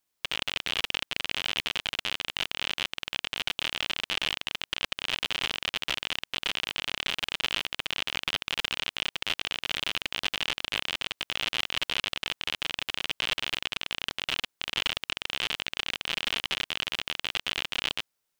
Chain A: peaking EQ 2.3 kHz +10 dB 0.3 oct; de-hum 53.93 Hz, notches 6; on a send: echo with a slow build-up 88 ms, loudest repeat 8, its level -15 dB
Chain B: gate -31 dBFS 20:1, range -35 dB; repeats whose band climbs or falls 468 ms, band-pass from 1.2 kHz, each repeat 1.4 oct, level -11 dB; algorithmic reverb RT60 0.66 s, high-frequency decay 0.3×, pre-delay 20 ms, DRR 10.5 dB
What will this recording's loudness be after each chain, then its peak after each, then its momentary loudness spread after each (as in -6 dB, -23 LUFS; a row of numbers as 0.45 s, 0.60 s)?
-25.5 LUFS, -33.5 LUFS; -5.5 dBFS, -8.5 dBFS; 2 LU, 9 LU